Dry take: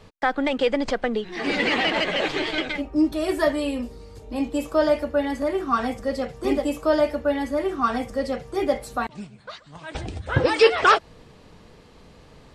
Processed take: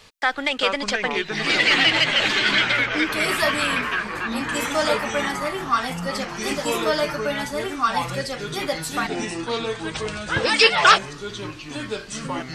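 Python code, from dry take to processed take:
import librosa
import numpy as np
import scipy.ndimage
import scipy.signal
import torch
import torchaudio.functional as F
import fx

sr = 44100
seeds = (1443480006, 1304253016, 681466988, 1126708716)

y = fx.echo_pitch(x, sr, ms=318, semitones=-5, count=3, db_per_echo=-3.0)
y = fx.tilt_shelf(y, sr, db=-9.5, hz=1100.0)
y = y * librosa.db_to_amplitude(1.0)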